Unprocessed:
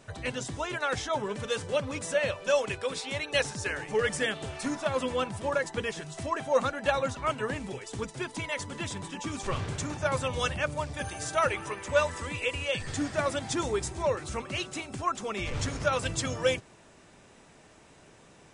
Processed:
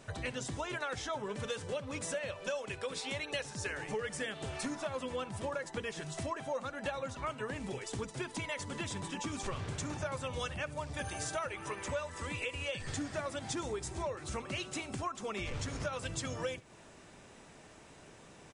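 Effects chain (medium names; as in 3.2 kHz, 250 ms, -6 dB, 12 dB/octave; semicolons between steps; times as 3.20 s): compression 6:1, threshold -35 dBFS, peak gain reduction 15.5 dB; on a send: delay 70 ms -22 dB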